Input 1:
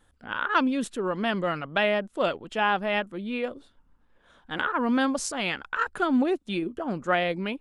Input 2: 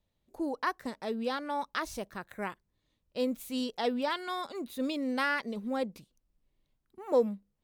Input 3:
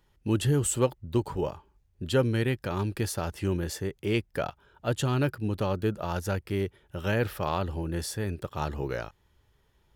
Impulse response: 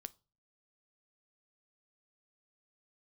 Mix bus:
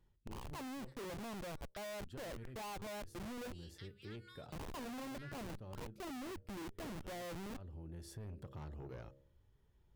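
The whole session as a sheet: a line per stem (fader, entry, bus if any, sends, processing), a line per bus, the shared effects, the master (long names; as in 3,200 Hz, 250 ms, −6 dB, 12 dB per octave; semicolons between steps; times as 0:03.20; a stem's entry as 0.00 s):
−2.5 dB, 0.00 s, no send, Butterworth low-pass 1,100 Hz 96 dB per octave; mains-hum notches 60/120/180/240/300/360/420 Hz; comparator with hysteresis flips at −33 dBFS
−16.5 dB, 0.00 s, no send, Butterworth high-pass 1,300 Hz 48 dB per octave
−16.0 dB, 0.00 s, send −6.5 dB, low-shelf EQ 490 Hz +11.5 dB; hum removal 67.5 Hz, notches 9; automatic ducking −21 dB, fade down 0.20 s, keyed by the first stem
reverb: on, RT60 0.35 s, pre-delay 8 ms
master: soft clipping −37 dBFS, distortion −12 dB; downward compressor, threshold −46 dBFS, peak gain reduction 7.5 dB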